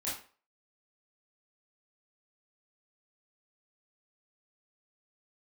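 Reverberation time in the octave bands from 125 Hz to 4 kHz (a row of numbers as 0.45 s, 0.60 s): 0.35 s, 0.35 s, 0.40 s, 0.40 s, 0.35 s, 0.30 s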